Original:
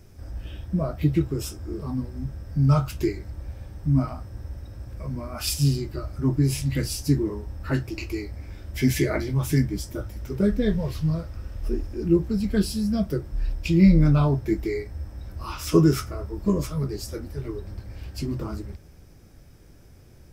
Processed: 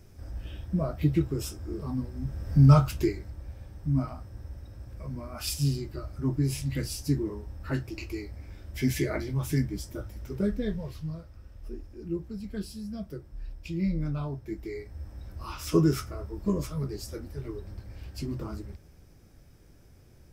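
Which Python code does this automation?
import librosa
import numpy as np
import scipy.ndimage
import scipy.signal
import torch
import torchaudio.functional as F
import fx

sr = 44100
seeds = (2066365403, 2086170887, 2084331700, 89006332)

y = fx.gain(x, sr, db=fx.line((2.2, -3.0), (2.55, 4.0), (3.37, -5.5), (10.37, -5.5), (11.26, -13.0), (14.44, -13.0), (15.11, -5.0)))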